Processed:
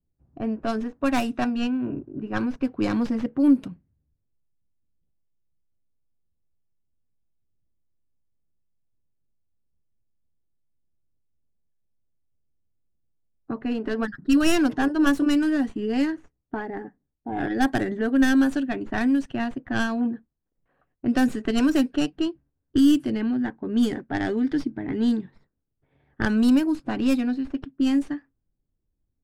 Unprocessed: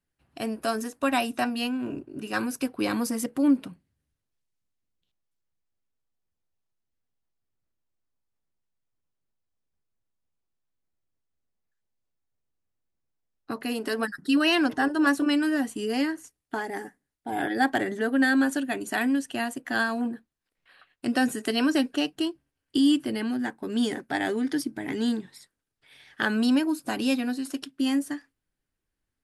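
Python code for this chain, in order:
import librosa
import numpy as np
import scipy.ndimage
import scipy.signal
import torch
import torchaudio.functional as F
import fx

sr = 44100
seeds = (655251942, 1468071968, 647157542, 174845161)

y = fx.tracing_dist(x, sr, depth_ms=0.14)
y = fx.env_lowpass(y, sr, base_hz=700.0, full_db=-19.0)
y = fx.low_shelf(y, sr, hz=290.0, db=11.5)
y = F.gain(torch.from_numpy(y), -2.5).numpy()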